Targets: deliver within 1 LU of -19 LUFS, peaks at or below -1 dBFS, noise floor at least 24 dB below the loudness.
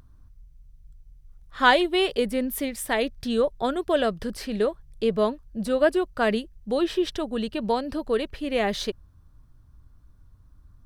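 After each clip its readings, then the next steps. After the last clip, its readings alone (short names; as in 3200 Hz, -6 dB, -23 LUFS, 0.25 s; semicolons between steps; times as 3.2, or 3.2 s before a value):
loudness -25.5 LUFS; peak -4.5 dBFS; loudness target -19.0 LUFS
-> gain +6.5 dB; limiter -1 dBFS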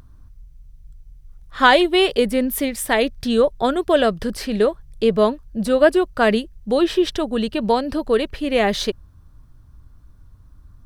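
loudness -19.0 LUFS; peak -1.0 dBFS; noise floor -48 dBFS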